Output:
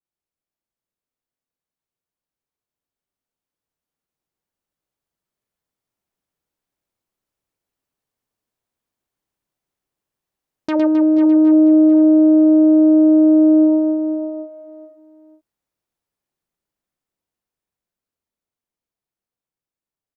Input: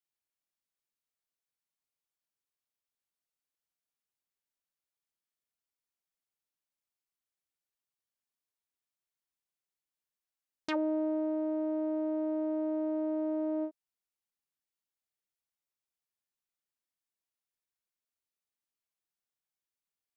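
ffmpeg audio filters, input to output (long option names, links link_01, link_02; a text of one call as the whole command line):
ffmpeg -i in.wav -filter_complex "[0:a]tiltshelf=frequency=1100:gain=6.5,asplit=2[link_01][link_02];[link_02]aecho=0:1:498:0.376[link_03];[link_01][link_03]amix=inputs=2:normalize=0,dynaudnorm=framelen=810:gausssize=11:maxgain=9dB,asplit=2[link_04][link_05];[link_05]aecho=0:1:110|264|479.6|781.4|1204:0.631|0.398|0.251|0.158|0.1[link_06];[link_04][link_06]amix=inputs=2:normalize=0,adynamicequalizer=threshold=0.0126:dfrequency=2000:dqfactor=0.7:tfrequency=2000:tqfactor=0.7:attack=5:release=100:ratio=0.375:range=4:mode=cutabove:tftype=highshelf" out.wav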